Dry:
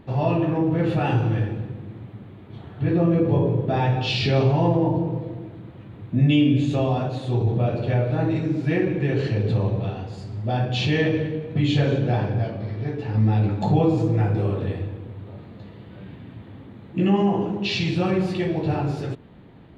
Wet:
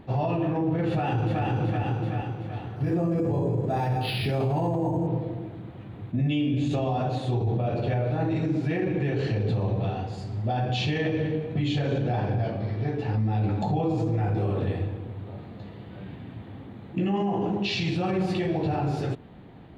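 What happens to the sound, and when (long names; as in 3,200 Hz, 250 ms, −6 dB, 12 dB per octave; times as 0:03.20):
0:00.88–0:01.45: delay throw 380 ms, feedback 50%, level −1 dB
0:02.76–0:05.07: linearly interpolated sample-rate reduction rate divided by 6×
whole clip: parametric band 750 Hz +5.5 dB 0.23 octaves; brickwall limiter −18.5 dBFS; level that may rise only so fast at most 490 dB per second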